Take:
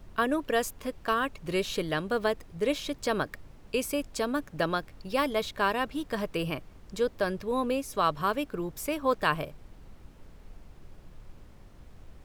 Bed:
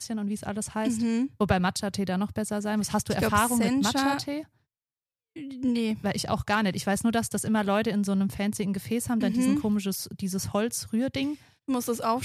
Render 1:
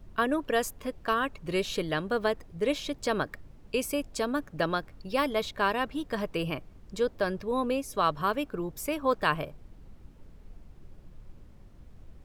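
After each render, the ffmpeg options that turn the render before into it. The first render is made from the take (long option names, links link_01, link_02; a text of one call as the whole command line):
ffmpeg -i in.wav -af "afftdn=noise_reduction=6:noise_floor=-53" out.wav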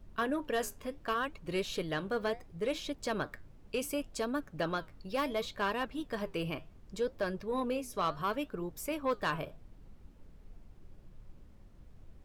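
ffmpeg -i in.wav -af "flanger=delay=3.2:depth=8.1:regen=-77:speed=0.69:shape=triangular,asoftclip=type=tanh:threshold=-22.5dB" out.wav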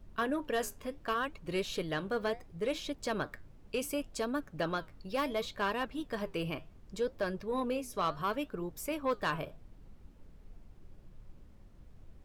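ffmpeg -i in.wav -af anull out.wav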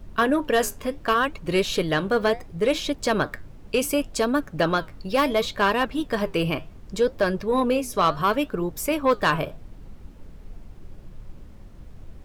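ffmpeg -i in.wav -af "volume=12dB" out.wav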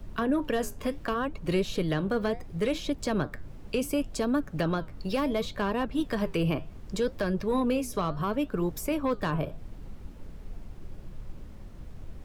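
ffmpeg -i in.wav -filter_complex "[0:a]acrossover=split=270|1000[link_01][link_02][link_03];[link_02]alimiter=level_in=0.5dB:limit=-24dB:level=0:latency=1:release=279,volume=-0.5dB[link_04];[link_03]acompressor=threshold=-37dB:ratio=6[link_05];[link_01][link_04][link_05]amix=inputs=3:normalize=0" out.wav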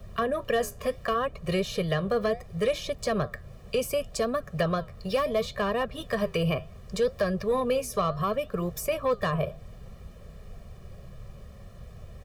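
ffmpeg -i in.wav -af "highpass=frequency=83:poles=1,aecho=1:1:1.7:0.9" out.wav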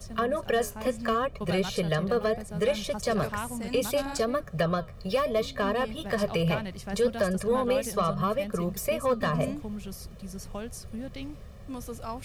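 ffmpeg -i in.wav -i bed.wav -filter_complex "[1:a]volume=-11dB[link_01];[0:a][link_01]amix=inputs=2:normalize=0" out.wav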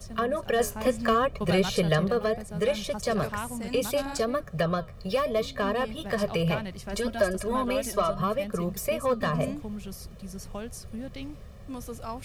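ffmpeg -i in.wav -filter_complex "[0:a]asettb=1/sr,asplit=3[link_01][link_02][link_03];[link_01]atrim=end=6.884[link_04];[link_02]atrim=start=6.88:end=8.2,asetpts=PTS-STARTPTS,afade=type=in:duration=0.004:curve=qsin,afade=type=out:start_time=1.316:duration=0.004:curve=qsin,aecho=1:1:3.1:0.65,atrim=end_sample=58212[link_05];[link_03]atrim=start=8.196[link_06];[link_04][link_05]acrossfade=duration=0.004:curve1=hsin:curve2=qsin[link_07];[link_07][link_06]acrossfade=duration=0.004:curve1=qsin:curve2=hsin,asplit=3[link_08][link_09][link_10];[link_08]atrim=end=0.592[link_11];[link_09]atrim=start=0.588:end=2.082,asetpts=PTS-STARTPTS,volume=3.5dB[link_12];[link_10]atrim=start=2.078[link_13];[link_11][link_12]acrossfade=duration=0.004:curve1=hsin:curve2=hsin[link_14];[link_14][link_13]acrossfade=duration=0.004:curve1=hsin:curve2=hsin" out.wav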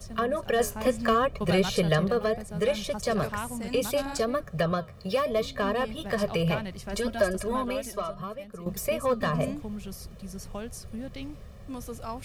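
ffmpeg -i in.wav -filter_complex "[0:a]asettb=1/sr,asplit=3[link_01][link_02][link_03];[link_01]atrim=end=4.724[link_04];[link_02]atrim=start=4.72:end=5.29,asetpts=PTS-STARTPTS,afade=type=in:duration=0.004:curve=qsin,afade=type=out:start_time=0.566:duration=0.004:curve=qsin,highpass=75[link_05];[link_03]atrim=start=5.286[link_06];[link_04][link_05]acrossfade=duration=0.004:curve1=hsin:curve2=qsin[link_07];[link_07][link_06]acrossfade=duration=0.004:curve1=qsin:curve2=hsin,asplit=2[link_08][link_09];[link_08]atrim=end=8.66,asetpts=PTS-STARTPTS,afade=type=out:start_time=7.44:duration=1.22:curve=qua:silence=0.266073[link_10];[link_09]atrim=start=8.66,asetpts=PTS-STARTPTS,afade=type=in:duration=0.004:curve=hsin:silence=0.266073[link_11];[link_10][link_11]concat=n=2:v=0:a=1" out.wav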